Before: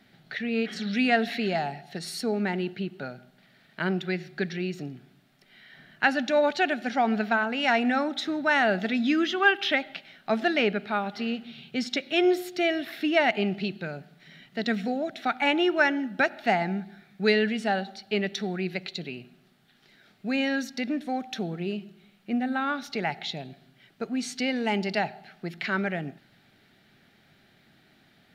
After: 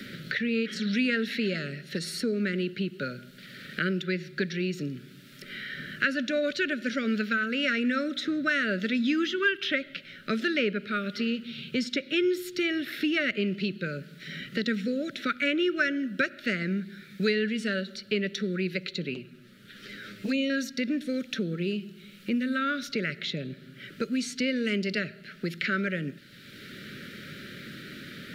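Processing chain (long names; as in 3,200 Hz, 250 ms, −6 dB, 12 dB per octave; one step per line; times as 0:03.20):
elliptic band-stop filter 560–1,300 Hz, stop band 40 dB
0:19.14–0:20.50: flanger swept by the level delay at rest 10.7 ms, full sweep at −24.5 dBFS
multiband upward and downward compressor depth 70%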